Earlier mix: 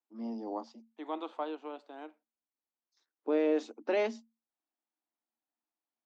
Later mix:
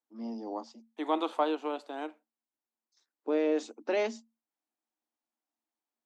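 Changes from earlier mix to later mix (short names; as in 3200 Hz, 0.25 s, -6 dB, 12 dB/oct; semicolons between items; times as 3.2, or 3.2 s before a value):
second voice +8.0 dB; master: remove air absorption 99 m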